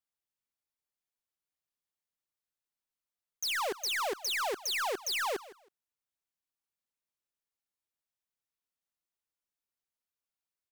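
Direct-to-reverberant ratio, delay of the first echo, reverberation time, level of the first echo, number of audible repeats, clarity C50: none, 0.16 s, none, -18.0 dB, 2, none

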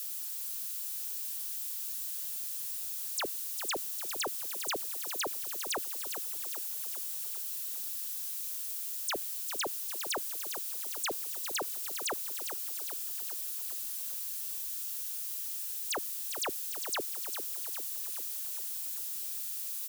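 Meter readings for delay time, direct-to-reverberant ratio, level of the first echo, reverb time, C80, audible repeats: 0.401 s, none, -8.5 dB, none, none, 6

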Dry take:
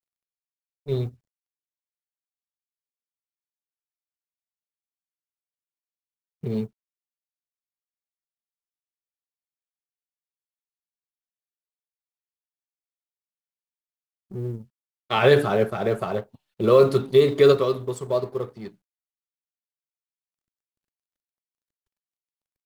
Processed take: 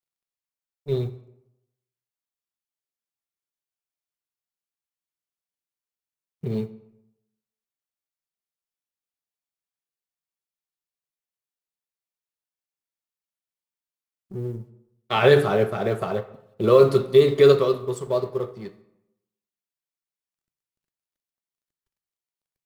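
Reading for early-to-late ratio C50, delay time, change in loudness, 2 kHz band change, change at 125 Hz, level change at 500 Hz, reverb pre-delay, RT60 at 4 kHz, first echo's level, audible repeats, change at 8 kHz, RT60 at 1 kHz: 15.0 dB, none, +1.0 dB, +0.5 dB, +1.0 dB, +1.0 dB, 3 ms, 0.55 s, none, none, n/a, 0.85 s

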